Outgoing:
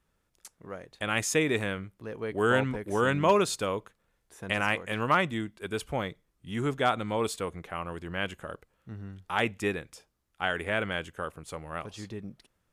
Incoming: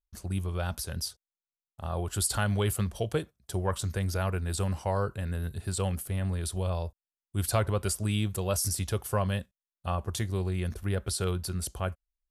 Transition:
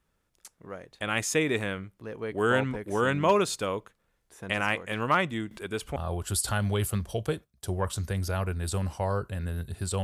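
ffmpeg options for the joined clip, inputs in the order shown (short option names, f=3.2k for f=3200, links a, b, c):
-filter_complex "[0:a]asettb=1/sr,asplit=3[a][b][c];[a]atrim=end=5.514[d];[b]atrim=start=5.51:end=5.96,asetpts=PTS-STARTPTS,afade=t=in:d=0.004:c=qsin,afade=t=out:st=0.446:d=0.004:c=qsin,acompressor=mode=upward:threshold=-34dB:ratio=2.5:attack=3.2:release=140:knee=2.83:detection=peak[e];[c]atrim=start=5.956[f];[d][e]acrossfade=d=0.004:c1=hsin:c2=qsin[g];[g][f]acrossfade=d=0.004:c1=qsin:c2=hsin,apad=whole_dur=10.03,atrim=end=10.03,atrim=end=5.962[h];[1:a]atrim=start=1.818:end=5.89[i];[h][i]acrossfade=d=0.004:c1=hsin:c2=hsin"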